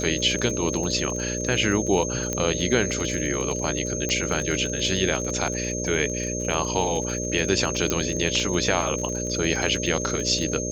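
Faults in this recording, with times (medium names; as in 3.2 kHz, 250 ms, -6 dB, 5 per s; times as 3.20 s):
buzz 60 Hz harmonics 10 -30 dBFS
crackle 33 per s -29 dBFS
whine 6.4 kHz -30 dBFS
2.33 s: pop -11 dBFS
4.09 s: pop -13 dBFS
7.90 s: pop -8 dBFS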